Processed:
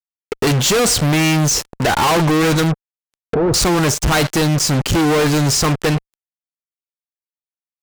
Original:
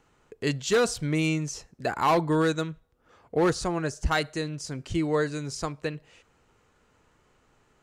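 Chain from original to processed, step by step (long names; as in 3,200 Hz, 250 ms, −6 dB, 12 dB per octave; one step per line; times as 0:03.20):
harmonic generator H 7 −23 dB, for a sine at −14 dBFS
fuzz pedal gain 51 dB, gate −51 dBFS
0:02.71–0:03.54: treble cut that deepens with the level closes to 850 Hz, closed at −17 dBFS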